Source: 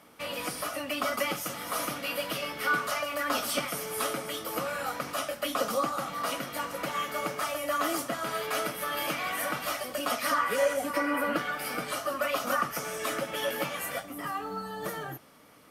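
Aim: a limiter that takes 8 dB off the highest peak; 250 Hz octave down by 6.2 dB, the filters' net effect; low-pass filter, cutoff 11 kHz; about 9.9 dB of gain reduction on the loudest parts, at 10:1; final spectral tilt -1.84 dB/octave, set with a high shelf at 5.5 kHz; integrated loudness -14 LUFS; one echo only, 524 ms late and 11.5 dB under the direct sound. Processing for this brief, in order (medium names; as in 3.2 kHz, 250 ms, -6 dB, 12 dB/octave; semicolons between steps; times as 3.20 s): low-pass 11 kHz; peaking EQ 250 Hz -8 dB; treble shelf 5.5 kHz +8 dB; compression 10:1, threshold -32 dBFS; peak limiter -28 dBFS; delay 524 ms -11.5 dB; trim +22.5 dB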